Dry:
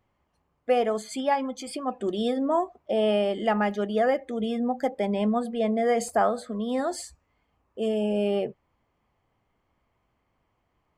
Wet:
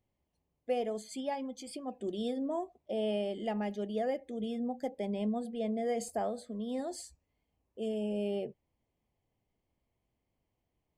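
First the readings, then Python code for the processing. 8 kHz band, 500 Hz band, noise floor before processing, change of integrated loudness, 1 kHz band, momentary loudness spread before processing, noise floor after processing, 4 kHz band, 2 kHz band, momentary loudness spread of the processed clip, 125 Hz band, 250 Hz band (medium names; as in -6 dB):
-8.0 dB, -9.5 dB, -74 dBFS, -9.5 dB, -13.0 dB, 8 LU, -83 dBFS, -9.5 dB, -14.5 dB, 8 LU, no reading, -8.0 dB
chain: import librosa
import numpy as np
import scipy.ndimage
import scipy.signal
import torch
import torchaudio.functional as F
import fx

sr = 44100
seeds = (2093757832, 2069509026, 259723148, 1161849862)

y = fx.peak_eq(x, sr, hz=1300.0, db=-15.0, octaves=0.99)
y = y * 10.0 ** (-7.5 / 20.0)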